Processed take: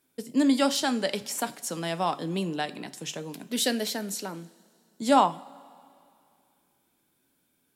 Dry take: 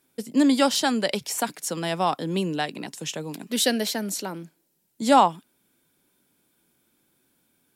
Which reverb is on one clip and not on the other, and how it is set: two-slope reverb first 0.33 s, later 2.5 s, from -18 dB, DRR 11 dB; gain -4 dB

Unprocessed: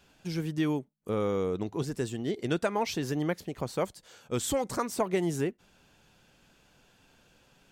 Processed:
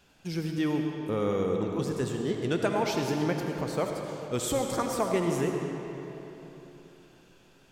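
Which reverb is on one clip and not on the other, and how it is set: digital reverb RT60 3.5 s, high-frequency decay 0.7×, pre-delay 35 ms, DRR 2 dB

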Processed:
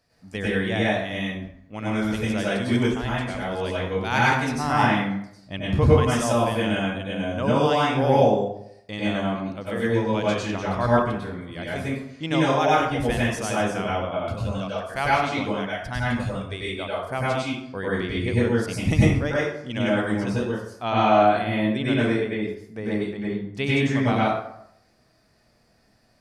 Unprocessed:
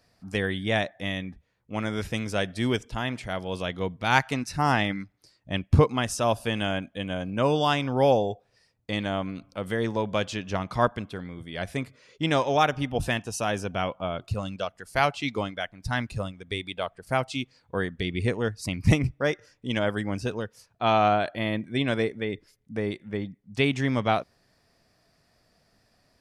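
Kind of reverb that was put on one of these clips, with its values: plate-style reverb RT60 0.72 s, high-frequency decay 0.6×, pre-delay 85 ms, DRR -7 dB; gain -4.5 dB

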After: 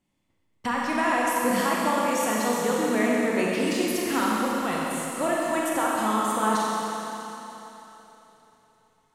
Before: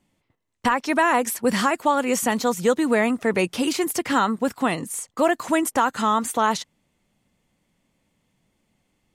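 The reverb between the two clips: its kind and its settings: Schroeder reverb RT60 3.5 s, combs from 29 ms, DRR -4.5 dB; gain -8.5 dB

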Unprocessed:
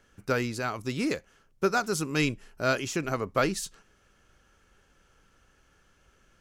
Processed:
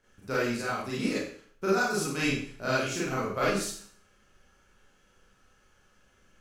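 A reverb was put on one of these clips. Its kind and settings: Schroeder reverb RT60 0.52 s, combs from 30 ms, DRR -8 dB; gain -8.5 dB

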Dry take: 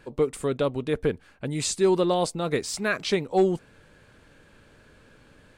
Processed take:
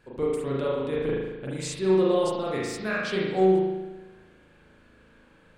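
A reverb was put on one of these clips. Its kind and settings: spring tank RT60 1.1 s, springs 37 ms, chirp 35 ms, DRR -5.5 dB; gain -8 dB

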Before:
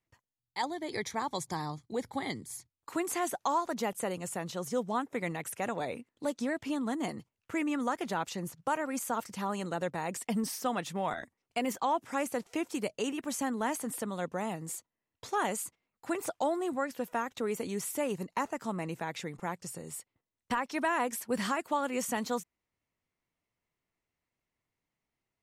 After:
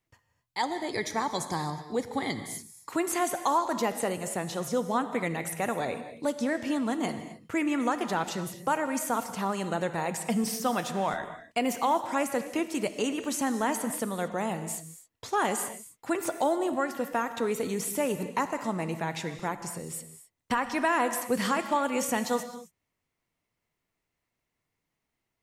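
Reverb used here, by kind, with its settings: non-linear reverb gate 0.29 s flat, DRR 9 dB; gain +4 dB

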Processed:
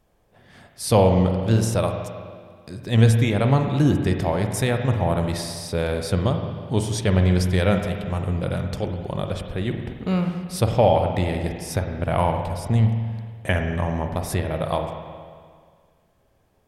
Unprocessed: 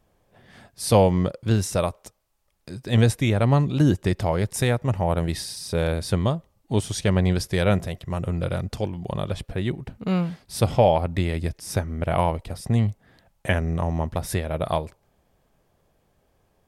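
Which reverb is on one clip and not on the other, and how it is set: spring tank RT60 1.9 s, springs 44/53 ms, chirp 60 ms, DRR 4.5 dB

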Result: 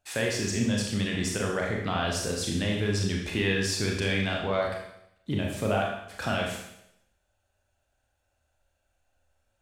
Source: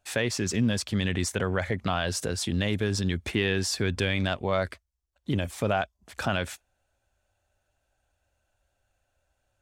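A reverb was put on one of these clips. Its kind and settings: Schroeder reverb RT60 0.79 s, combs from 27 ms, DRR -1 dB; gain -3.5 dB

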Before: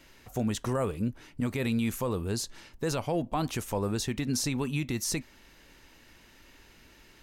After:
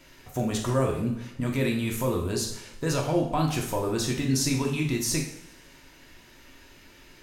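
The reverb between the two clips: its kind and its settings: two-slope reverb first 0.6 s, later 1.7 s, DRR -0.5 dB; gain +1 dB

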